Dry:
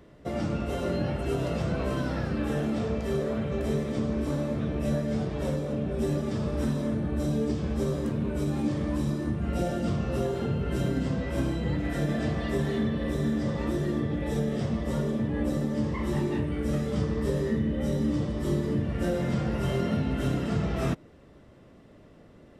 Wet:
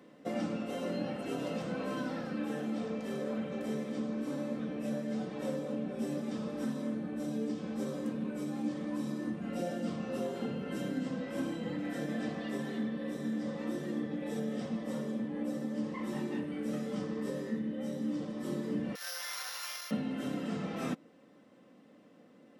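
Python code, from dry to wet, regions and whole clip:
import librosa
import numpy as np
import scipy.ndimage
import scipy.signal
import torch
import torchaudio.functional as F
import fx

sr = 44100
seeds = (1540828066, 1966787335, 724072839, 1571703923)

y = fx.chain(x, sr, fx.sample_sort(block=8),
    fx.highpass(hz=1100.0, slope=24), at=(18.95, 19.91))
y = scipy.signal.sosfilt(scipy.signal.butter(4, 150.0, 'highpass', fs=sr, output='sos'), y)
y = y + 0.51 * np.pad(y, (int(3.9 * sr / 1000.0), 0))[:len(y)]
y = fx.rider(y, sr, range_db=10, speed_s=0.5)
y = y * librosa.db_to_amplitude(-7.5)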